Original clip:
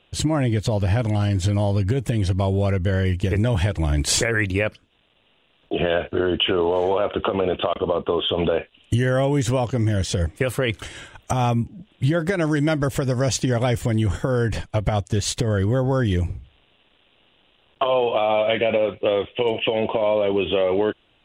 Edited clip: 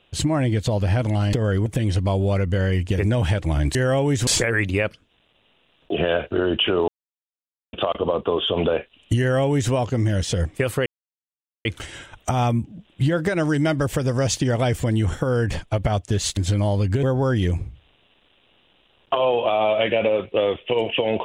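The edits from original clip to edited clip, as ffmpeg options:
ffmpeg -i in.wav -filter_complex "[0:a]asplit=10[link_01][link_02][link_03][link_04][link_05][link_06][link_07][link_08][link_09][link_10];[link_01]atrim=end=1.332[link_11];[link_02]atrim=start=15.388:end=15.722[link_12];[link_03]atrim=start=1.988:end=4.082[link_13];[link_04]atrim=start=9.008:end=9.532[link_14];[link_05]atrim=start=4.078:end=6.69,asetpts=PTS-STARTPTS,afade=type=out:start_time=2.608:duration=0.004:curve=hsin[link_15];[link_06]atrim=start=6.69:end=7.54,asetpts=PTS-STARTPTS,volume=0[link_16];[link_07]atrim=start=7.54:end=10.67,asetpts=PTS-STARTPTS,afade=type=in:duration=0.004:curve=hsin,afade=type=out:start_time=3.126:duration=0.004:curve=hsin,apad=pad_dur=0.79[link_17];[link_08]atrim=start=10.67:end=15.392,asetpts=PTS-STARTPTS,afade=type=in:duration=0.004:curve=hsin[link_18];[link_09]atrim=start=1.328:end=1.992[link_19];[link_10]atrim=start=15.718[link_20];[link_11][link_12]acrossfade=duration=0.004:curve1=hsin:curve2=hsin[link_21];[link_21][link_13]acrossfade=duration=0.004:curve1=hsin:curve2=hsin[link_22];[link_22][link_14]acrossfade=duration=0.004:curve1=hsin:curve2=hsin[link_23];[link_15][link_16][link_17][link_18]concat=n=4:v=0:a=1[link_24];[link_23][link_24]acrossfade=duration=0.004:curve1=hsin:curve2=hsin[link_25];[link_25][link_19]acrossfade=duration=0.004:curve1=hsin:curve2=hsin[link_26];[link_26][link_20]acrossfade=duration=0.004:curve1=hsin:curve2=hsin" out.wav

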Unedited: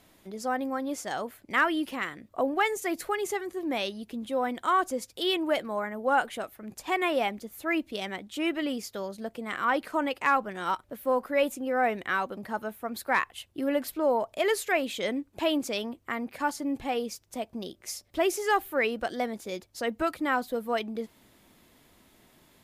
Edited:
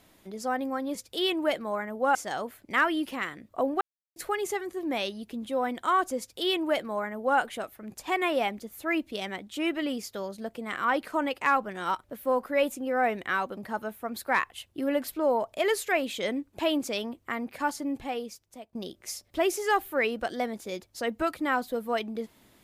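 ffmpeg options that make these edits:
ffmpeg -i in.wav -filter_complex "[0:a]asplit=6[link_01][link_02][link_03][link_04][link_05][link_06];[link_01]atrim=end=0.952[link_07];[link_02]atrim=start=4.988:end=6.192[link_08];[link_03]atrim=start=0.948:end=2.61,asetpts=PTS-STARTPTS,afade=type=out:start_time=1.658:duration=0.004:curve=hsin[link_09];[link_04]atrim=start=2.61:end=2.96,asetpts=PTS-STARTPTS,volume=0[link_10];[link_05]atrim=start=2.96:end=17.55,asetpts=PTS-STARTPTS,afade=type=in:duration=0.004:curve=hsin,afade=type=out:start_time=13.61:duration=0.98:silence=0.16788[link_11];[link_06]atrim=start=17.55,asetpts=PTS-STARTPTS,afade=type=in:duration=0.004:curve=hsin:silence=0.16788[link_12];[link_07][link_08]acrossfade=duration=0.004:curve1=hsin:curve2=hsin[link_13];[link_09][link_10][link_11][link_12]concat=n=4:v=0:a=1[link_14];[link_13][link_14]acrossfade=duration=0.004:curve1=hsin:curve2=hsin" out.wav

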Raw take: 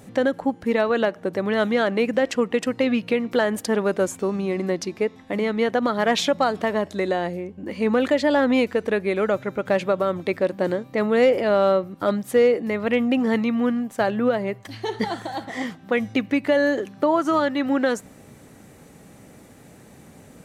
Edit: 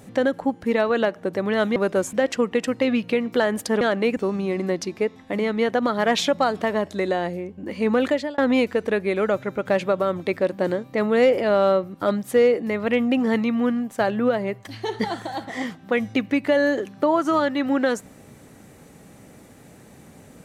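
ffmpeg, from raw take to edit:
ffmpeg -i in.wav -filter_complex "[0:a]asplit=6[link_01][link_02][link_03][link_04][link_05][link_06];[link_01]atrim=end=1.762[link_07];[link_02]atrim=start=3.798:end=4.172[link_08];[link_03]atrim=start=2.118:end=3.802[link_09];[link_04]atrim=start=1.758:end=2.122[link_10];[link_05]atrim=start=4.168:end=8.38,asetpts=PTS-STARTPTS,afade=type=out:start_time=3.912:duration=0.3[link_11];[link_06]atrim=start=8.38,asetpts=PTS-STARTPTS,afade=type=in:duration=0.004:curve=hsin[link_12];[link_07][link_08]acrossfade=duration=0.004:curve1=hsin:curve2=hsin[link_13];[link_13][link_09]acrossfade=duration=0.004:curve1=hsin:curve2=hsin[link_14];[link_14][link_10]acrossfade=duration=0.004:curve1=hsin:curve2=hsin[link_15];[link_11][link_12]concat=n=2:v=0:a=1[link_16];[link_15][link_16]acrossfade=duration=0.004:curve1=hsin:curve2=hsin" out.wav

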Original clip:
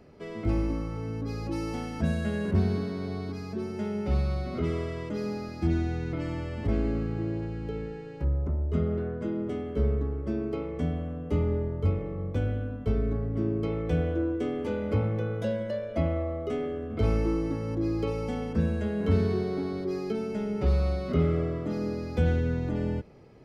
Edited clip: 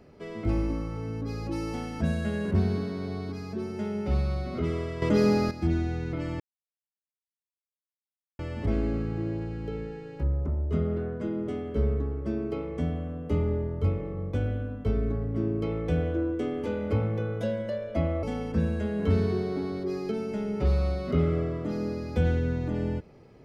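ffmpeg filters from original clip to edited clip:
ffmpeg -i in.wav -filter_complex "[0:a]asplit=5[link_01][link_02][link_03][link_04][link_05];[link_01]atrim=end=5.022[link_06];[link_02]atrim=start=5.018:end=5.512,asetpts=PTS-STARTPTS,volume=10.5dB[link_07];[link_03]atrim=start=5.508:end=6.4,asetpts=PTS-STARTPTS,afade=type=out:start_time=0.888:duration=0.004:curve=hsin,apad=pad_dur=1.99[link_08];[link_04]atrim=start=6.4:end=16.242,asetpts=PTS-STARTPTS,afade=type=in:duration=0.004:curve=hsin[link_09];[link_05]atrim=start=18.238[link_10];[link_06][link_07]acrossfade=duration=0.004:curve1=hsin:curve2=hsin[link_11];[link_08][link_09]concat=n=2:v=0:a=1[link_12];[link_11][link_12]acrossfade=duration=0.004:curve1=hsin:curve2=hsin[link_13];[link_13][link_10]acrossfade=duration=0.004:curve1=hsin:curve2=hsin" out.wav

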